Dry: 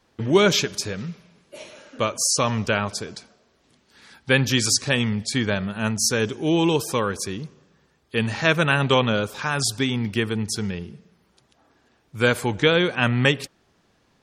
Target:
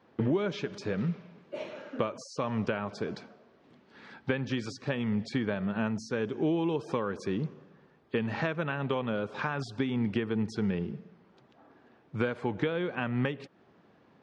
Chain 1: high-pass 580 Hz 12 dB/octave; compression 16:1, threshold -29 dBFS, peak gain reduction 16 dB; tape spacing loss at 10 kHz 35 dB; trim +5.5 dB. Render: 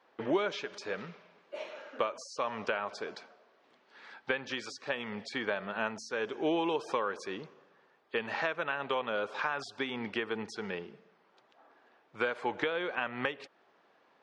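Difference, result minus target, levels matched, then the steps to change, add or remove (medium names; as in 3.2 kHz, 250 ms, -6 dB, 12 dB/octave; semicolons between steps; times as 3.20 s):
125 Hz band -14.5 dB
change: high-pass 150 Hz 12 dB/octave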